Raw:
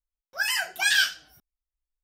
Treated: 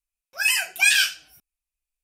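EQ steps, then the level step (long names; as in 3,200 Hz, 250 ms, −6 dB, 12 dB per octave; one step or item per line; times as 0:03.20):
parametric band 2,500 Hz +15 dB 0.28 octaves
parametric band 10,000 Hz +11.5 dB 1.4 octaves
−2.5 dB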